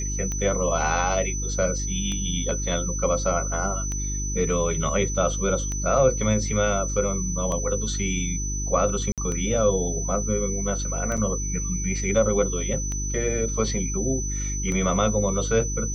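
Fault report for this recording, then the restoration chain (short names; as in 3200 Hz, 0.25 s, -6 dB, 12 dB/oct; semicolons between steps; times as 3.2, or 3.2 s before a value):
hum 50 Hz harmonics 7 -29 dBFS
tick 33 1/3 rpm -17 dBFS
tone 6000 Hz -30 dBFS
9.12–9.18 gap 57 ms
11.17–11.18 gap 5.7 ms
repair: de-click; notch 6000 Hz, Q 30; de-hum 50 Hz, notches 7; interpolate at 9.12, 57 ms; interpolate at 11.17, 5.7 ms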